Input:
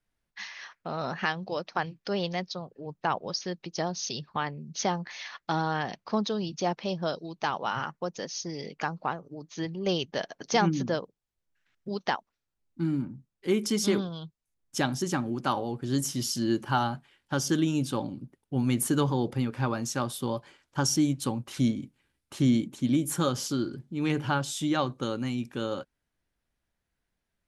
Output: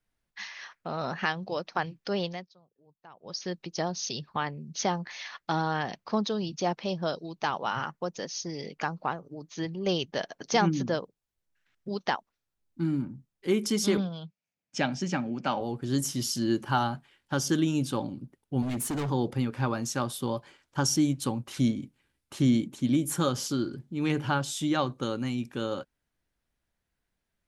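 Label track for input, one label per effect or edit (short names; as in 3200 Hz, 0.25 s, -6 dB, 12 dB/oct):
2.210000	3.460000	dip -23.5 dB, fades 0.28 s
13.970000	15.610000	speaker cabinet 150–6100 Hz, peaks and dips at 190 Hz +5 dB, 360 Hz -7 dB, 620 Hz +3 dB, 1100 Hz -6 dB, 2400 Hz +7 dB, 3800 Hz -5 dB
18.620000	19.100000	hard clip -28.5 dBFS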